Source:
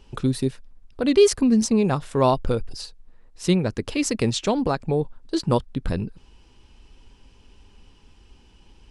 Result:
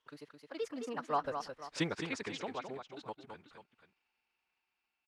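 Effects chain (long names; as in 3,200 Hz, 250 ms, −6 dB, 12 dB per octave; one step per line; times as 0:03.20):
mu-law and A-law mismatch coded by A
source passing by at 0:02.92, 36 m/s, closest 2.4 metres
in parallel at +1 dB: downward compressor, threshold −40 dBFS, peak gain reduction 13.5 dB
on the sum: resonant band-pass 1,400 Hz, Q 0.9
multi-tap delay 376/859 ms −7.5/−15.5 dB
phase-vocoder stretch with locked phases 0.57×
one half of a high-frequency compander encoder only
level +10.5 dB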